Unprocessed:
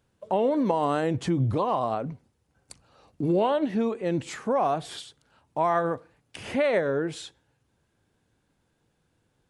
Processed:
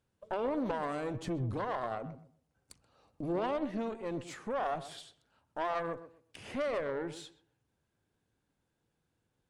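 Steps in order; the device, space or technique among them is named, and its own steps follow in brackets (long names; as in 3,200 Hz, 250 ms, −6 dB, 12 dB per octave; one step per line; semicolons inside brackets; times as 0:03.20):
rockabilly slapback (tube saturation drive 22 dB, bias 0.75; tape delay 127 ms, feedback 25%, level −11 dB, low-pass 1,200 Hz)
level −5 dB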